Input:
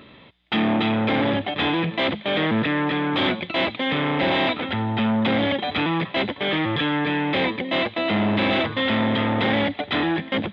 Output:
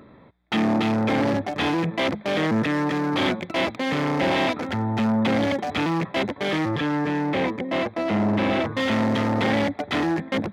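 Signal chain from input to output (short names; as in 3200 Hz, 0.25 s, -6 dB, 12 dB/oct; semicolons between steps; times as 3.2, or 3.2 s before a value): Wiener smoothing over 15 samples; 6.69–8.75 high shelf 3300 Hz -9 dB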